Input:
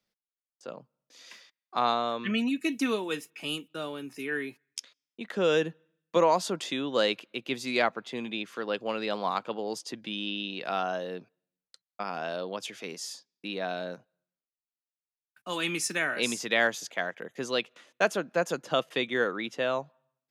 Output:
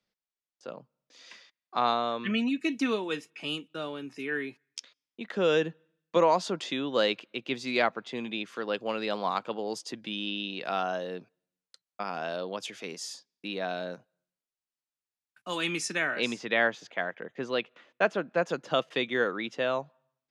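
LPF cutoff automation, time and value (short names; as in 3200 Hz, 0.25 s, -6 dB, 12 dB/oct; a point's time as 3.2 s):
7.86 s 6000 Hz
8.67 s 10000 Hz
15.53 s 10000 Hz
16.11 s 5300 Hz
16.46 s 3000 Hz
18.26 s 3000 Hz
18.72 s 6200 Hz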